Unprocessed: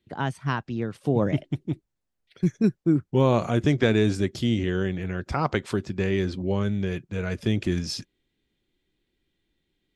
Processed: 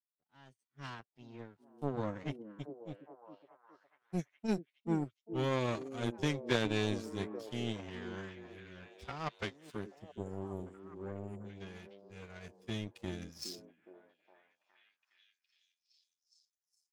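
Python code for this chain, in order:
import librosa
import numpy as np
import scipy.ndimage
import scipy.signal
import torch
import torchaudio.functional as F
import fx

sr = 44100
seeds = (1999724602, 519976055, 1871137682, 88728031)

y = fx.fade_in_head(x, sr, length_s=0.59)
y = fx.spec_erase(y, sr, start_s=5.89, length_s=0.85, low_hz=800.0, high_hz=6900.0)
y = fx.high_shelf(y, sr, hz=2300.0, db=8.5)
y = fx.stretch_vocoder(y, sr, factor=1.7)
y = fx.power_curve(y, sr, exponent=2.0)
y = fx.echo_stepped(y, sr, ms=414, hz=300.0, octaves=0.7, feedback_pct=70, wet_db=-7.5)
y = F.gain(torch.from_numpy(y), -6.0).numpy()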